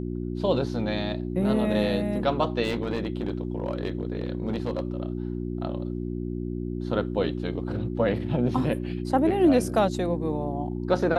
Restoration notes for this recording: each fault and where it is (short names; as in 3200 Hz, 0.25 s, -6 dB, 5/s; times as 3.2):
hum 60 Hz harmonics 6 -31 dBFS
2.63–4.82 clipped -22 dBFS